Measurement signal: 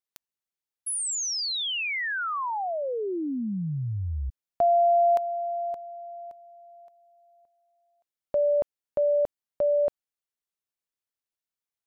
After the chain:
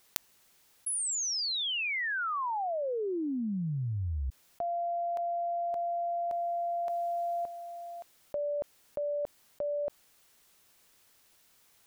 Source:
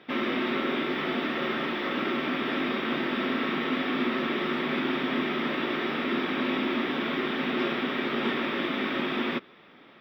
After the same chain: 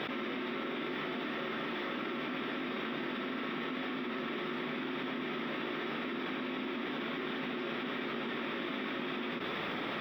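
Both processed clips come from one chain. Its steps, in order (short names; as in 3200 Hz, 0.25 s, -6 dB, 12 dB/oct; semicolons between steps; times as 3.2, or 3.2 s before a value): fast leveller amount 100%; gain -12.5 dB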